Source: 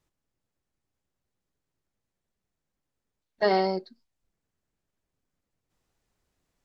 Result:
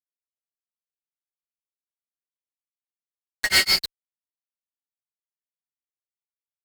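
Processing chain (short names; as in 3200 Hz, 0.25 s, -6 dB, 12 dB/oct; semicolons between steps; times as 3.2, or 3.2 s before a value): inverse Chebyshev band-stop 120–890 Hz, stop band 40 dB; fuzz box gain 61 dB, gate -52 dBFS; grains 0.163 s, grains 6.3/s, spray 29 ms, pitch spread up and down by 0 st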